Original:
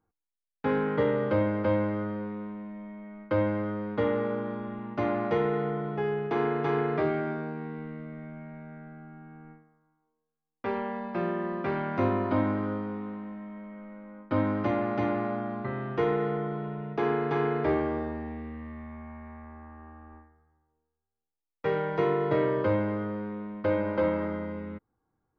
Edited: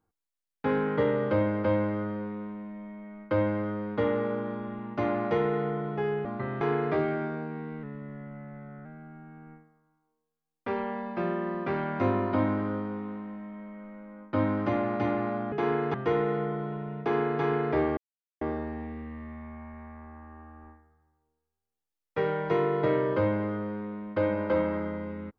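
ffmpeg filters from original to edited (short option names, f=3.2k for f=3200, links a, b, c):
-filter_complex "[0:a]asplit=8[a][b][c][d][e][f][g][h];[a]atrim=end=6.252[i];[b]atrim=start=15.498:end=15.862[j];[c]atrim=start=6.668:end=7.894[k];[d]atrim=start=7.89:end=8.83,asetpts=PTS-STARTPTS,asetrate=40572,aresample=44100[l];[e]atrim=start=8.826:end=15.502[m];[f]atrim=start=6.248:end=6.672[n];[g]atrim=start=15.858:end=17.89,asetpts=PTS-STARTPTS,afade=t=out:st=2.028:d=0.004:c=hsin,apad=pad_dur=0.44[o];[h]atrim=start=17.89,asetpts=PTS-STARTPTS,afade=t=in:d=0.004:c=hsin[p];[i][j]acrossfade=d=0.004:c1=hsin:c2=hsin[q];[q][k]acrossfade=d=0.004:c1=hsin:c2=hsin[r];[r][l]acrossfade=d=0.004:c1=hsin:c2=hsin[s];[s][m]acrossfade=d=0.004:c1=hsin:c2=hsin[t];[t][n]acrossfade=d=0.004:c1=hsin:c2=hsin[u];[o][p]concat=n=2:v=0:a=1[v];[u][v]acrossfade=d=0.004:c1=hsin:c2=hsin"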